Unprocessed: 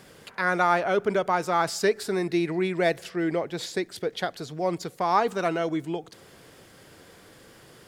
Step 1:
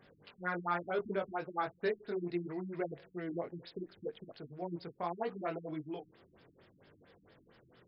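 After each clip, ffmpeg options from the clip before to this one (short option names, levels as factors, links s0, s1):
-af "flanger=delay=19.5:depth=4.3:speed=0.71,afftfilt=real='re*lt(b*sr/1024,320*pow(5500/320,0.5+0.5*sin(2*PI*4.4*pts/sr)))':imag='im*lt(b*sr/1024,320*pow(5500/320,0.5+0.5*sin(2*PI*4.4*pts/sr)))':win_size=1024:overlap=0.75,volume=0.398"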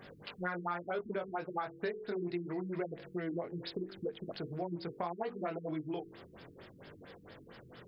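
-af "bandreject=f=47.84:t=h:w=4,bandreject=f=95.68:t=h:w=4,bandreject=f=143.52:t=h:w=4,bandreject=f=191.36:t=h:w=4,bandreject=f=239.2:t=h:w=4,bandreject=f=287.04:t=h:w=4,bandreject=f=334.88:t=h:w=4,bandreject=f=382.72:t=h:w=4,bandreject=f=430.56:t=h:w=4,bandreject=f=478.4:t=h:w=4,acompressor=threshold=0.00501:ratio=4,volume=3.16"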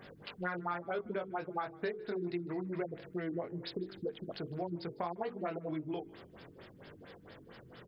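-filter_complex "[0:a]asplit=3[s0][s1][s2];[s1]adelay=154,afreqshift=-44,volume=0.0708[s3];[s2]adelay=308,afreqshift=-88,volume=0.0219[s4];[s0][s3][s4]amix=inputs=3:normalize=0"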